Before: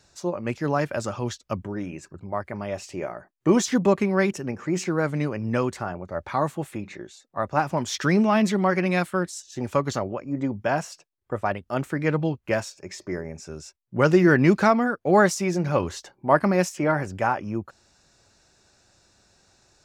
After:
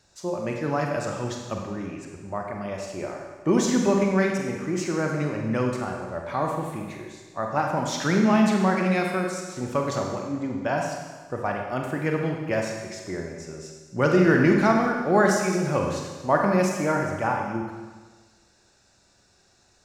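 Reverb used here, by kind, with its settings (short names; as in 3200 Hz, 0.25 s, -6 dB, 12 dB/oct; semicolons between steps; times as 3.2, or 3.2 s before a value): Schroeder reverb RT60 1.4 s, combs from 32 ms, DRR 1 dB; gain -3 dB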